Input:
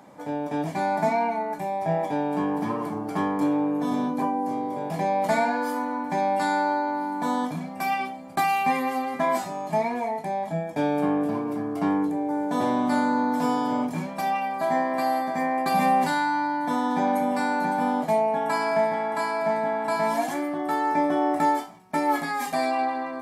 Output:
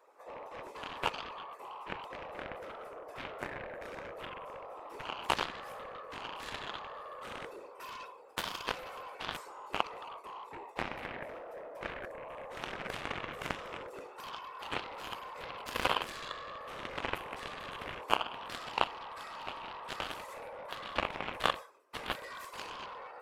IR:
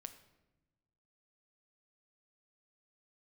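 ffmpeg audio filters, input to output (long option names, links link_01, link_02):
-af "afreqshift=260,afftfilt=real='hypot(re,im)*cos(2*PI*random(0))':imag='hypot(re,im)*sin(2*PI*random(1))':win_size=512:overlap=0.75,aeval=exprs='0.178*(cos(1*acos(clip(val(0)/0.178,-1,1)))-cos(1*PI/2))+0.0708*(cos(3*acos(clip(val(0)/0.178,-1,1)))-cos(3*PI/2))':channel_layout=same,volume=5.5dB"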